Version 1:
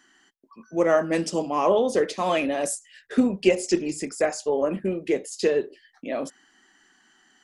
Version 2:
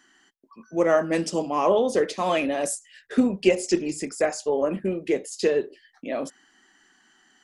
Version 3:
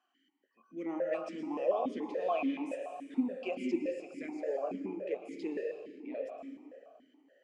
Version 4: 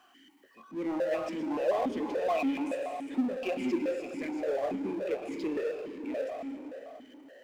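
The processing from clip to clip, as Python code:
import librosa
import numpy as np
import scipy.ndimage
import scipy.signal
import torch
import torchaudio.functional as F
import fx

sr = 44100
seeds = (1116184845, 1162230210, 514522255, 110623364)

y1 = x
y2 = fx.rev_plate(y1, sr, seeds[0], rt60_s=2.5, hf_ratio=0.65, predelay_ms=100, drr_db=4.0)
y2 = fx.vowel_held(y2, sr, hz=7.0)
y2 = y2 * librosa.db_to_amplitude(-3.0)
y3 = fx.power_curve(y2, sr, exponent=0.7)
y3 = y3 + 10.0 ** (-22.0 / 20.0) * np.pad(y3, (int(396 * sr / 1000.0), 0))[:len(y3)]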